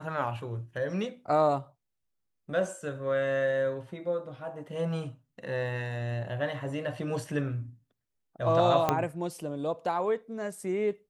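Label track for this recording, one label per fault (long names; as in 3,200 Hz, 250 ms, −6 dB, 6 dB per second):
8.890000	8.890000	click −11 dBFS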